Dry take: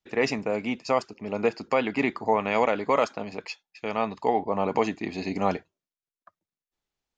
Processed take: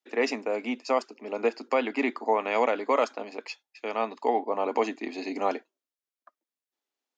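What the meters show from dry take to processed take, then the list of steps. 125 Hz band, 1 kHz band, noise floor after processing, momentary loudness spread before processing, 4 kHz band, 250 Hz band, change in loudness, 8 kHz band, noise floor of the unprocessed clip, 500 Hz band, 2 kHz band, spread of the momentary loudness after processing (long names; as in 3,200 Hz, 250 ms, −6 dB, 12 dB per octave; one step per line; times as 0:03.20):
below −15 dB, −1.5 dB, below −85 dBFS, 11 LU, −2.0 dB, −3.5 dB, −1.5 dB, can't be measured, below −85 dBFS, −1.0 dB, −2.0 dB, 11 LU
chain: elliptic high-pass filter 240 Hz, stop band 40 dB
level −1 dB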